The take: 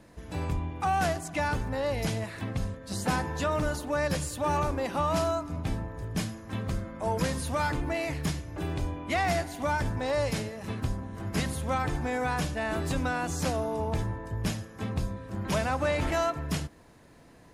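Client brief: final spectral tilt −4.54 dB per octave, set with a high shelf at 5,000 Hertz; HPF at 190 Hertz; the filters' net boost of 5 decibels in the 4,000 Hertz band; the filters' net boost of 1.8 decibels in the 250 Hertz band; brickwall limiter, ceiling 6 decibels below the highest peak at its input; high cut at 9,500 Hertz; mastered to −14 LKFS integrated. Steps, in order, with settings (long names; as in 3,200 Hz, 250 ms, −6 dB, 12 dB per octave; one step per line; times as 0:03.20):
high-pass filter 190 Hz
low-pass filter 9,500 Hz
parametric band 250 Hz +4.5 dB
parametric band 4,000 Hz +8 dB
high-shelf EQ 5,000 Hz −3.5 dB
level +18 dB
brickwall limiter −2 dBFS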